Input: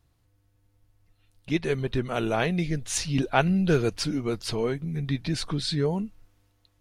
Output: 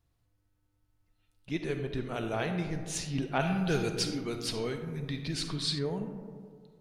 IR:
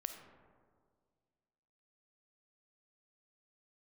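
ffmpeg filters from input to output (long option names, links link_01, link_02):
-filter_complex "[1:a]atrim=start_sample=2205[link_01];[0:a][link_01]afir=irnorm=-1:irlink=0,asettb=1/sr,asplit=3[link_02][link_03][link_04];[link_02]atrim=end=3.384[link_05];[link_03]atrim=start=3.38:end=5.79,asetpts=PTS-STARTPTS,afade=type=in:duration=0.004:curve=qsin,afade=type=out:start_time=2.406:duration=0.004:curve=qsin,adynamicequalizer=threshold=0.00631:dfrequency=1800:dqfactor=0.7:tfrequency=1800:tqfactor=0.7:attack=5:release=100:ratio=0.375:range=3.5:mode=boostabove:tftype=highshelf[link_06];[link_04]atrim=start=5.786[link_07];[link_05][link_06]acrossfade=duration=0.004:curve1=hsin:curve2=qsin[link_08];[link_08][link_07]acrossfade=duration=0.004:curve1=qsin:curve2=hsin,volume=-5dB"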